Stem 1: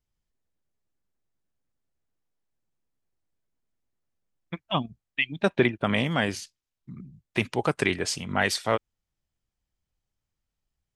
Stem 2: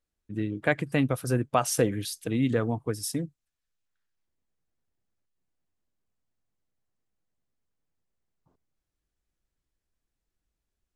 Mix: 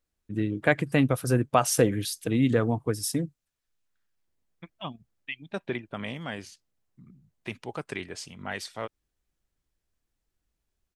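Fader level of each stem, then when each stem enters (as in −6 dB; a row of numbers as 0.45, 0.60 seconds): −10.5, +2.5 decibels; 0.10, 0.00 seconds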